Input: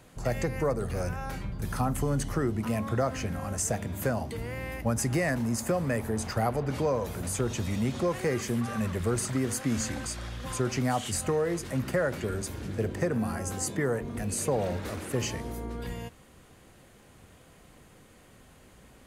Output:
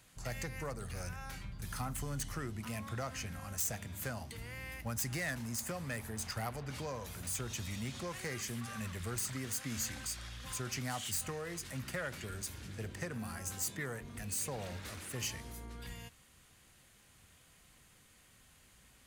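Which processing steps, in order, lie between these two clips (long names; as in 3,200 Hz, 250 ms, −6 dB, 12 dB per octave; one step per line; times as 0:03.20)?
phase distortion by the signal itself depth 0.064 ms
guitar amp tone stack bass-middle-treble 5-5-5
level +4.5 dB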